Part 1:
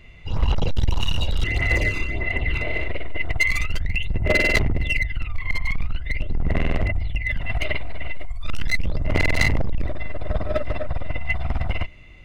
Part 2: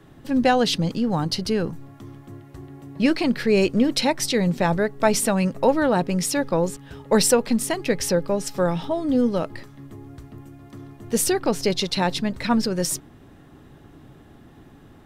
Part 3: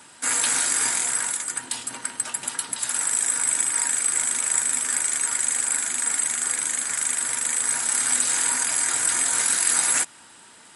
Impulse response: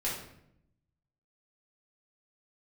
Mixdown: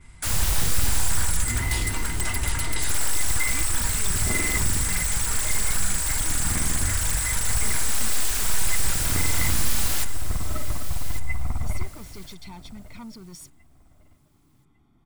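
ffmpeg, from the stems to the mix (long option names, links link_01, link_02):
-filter_complex "[0:a]lowpass=1700,volume=-7.5dB,asplit=3[link_01][link_02][link_03];[link_02]volume=-16.5dB[link_04];[link_03]volume=-15.5dB[link_05];[1:a]asoftclip=type=tanh:threshold=-19.5dB,adelay=500,volume=-19.5dB[link_06];[2:a]agate=range=-33dB:threshold=-39dB:ratio=3:detection=peak,aeval=exprs='0.0562*(abs(mod(val(0)/0.0562+3,4)-2)-1)':channel_layout=same,volume=2.5dB,asplit=2[link_07][link_08];[link_08]volume=-11.5dB[link_09];[link_01][link_06]amix=inputs=2:normalize=0,aecho=1:1:0.9:0.99,acompressor=threshold=-21dB:ratio=6,volume=0dB[link_10];[3:a]atrim=start_sample=2205[link_11];[link_04][link_11]afir=irnorm=-1:irlink=0[link_12];[link_05][link_09]amix=inputs=2:normalize=0,aecho=0:1:1151|2302|3453|4604:1|0.27|0.0729|0.0197[link_13];[link_07][link_10][link_12][link_13]amix=inputs=4:normalize=0"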